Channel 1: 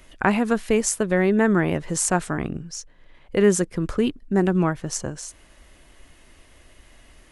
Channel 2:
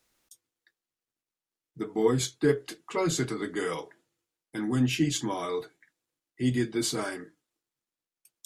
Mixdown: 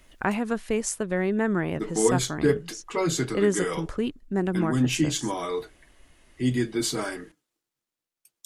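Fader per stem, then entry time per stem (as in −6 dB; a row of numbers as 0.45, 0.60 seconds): −6.0, +2.0 decibels; 0.00, 0.00 seconds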